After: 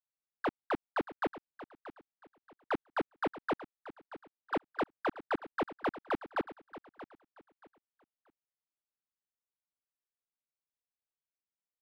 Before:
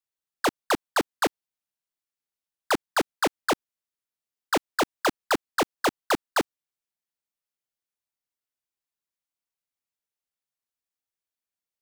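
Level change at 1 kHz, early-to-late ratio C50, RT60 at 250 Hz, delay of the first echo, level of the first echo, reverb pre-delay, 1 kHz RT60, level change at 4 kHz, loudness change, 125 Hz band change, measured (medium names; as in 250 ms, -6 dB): -9.0 dB, no reverb, no reverb, 630 ms, -15.0 dB, no reverb, no reverb, -19.0 dB, -9.5 dB, -7.0 dB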